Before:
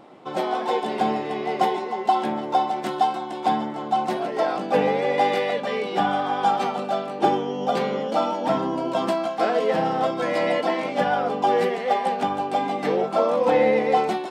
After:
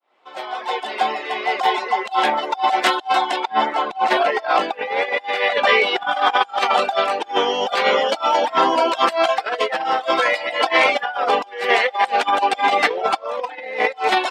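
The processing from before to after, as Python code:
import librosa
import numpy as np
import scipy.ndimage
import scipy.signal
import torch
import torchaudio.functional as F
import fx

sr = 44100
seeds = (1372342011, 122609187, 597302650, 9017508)

y = fx.fade_in_head(x, sr, length_s=3.15)
y = scipy.signal.sosfilt(scipy.signal.butter(2, 500.0, 'highpass', fs=sr, output='sos'), y)
y = fx.over_compress(y, sr, threshold_db=-28.0, ratio=-0.5)
y = fx.high_shelf(y, sr, hz=5100.0, db=-8.0, at=(3.36, 6.01))
y = fx.dereverb_blind(y, sr, rt60_s=0.72)
y = fx.peak_eq(y, sr, hz=2400.0, db=10.0, octaves=2.9)
y = F.gain(torch.from_numpy(y), 6.5).numpy()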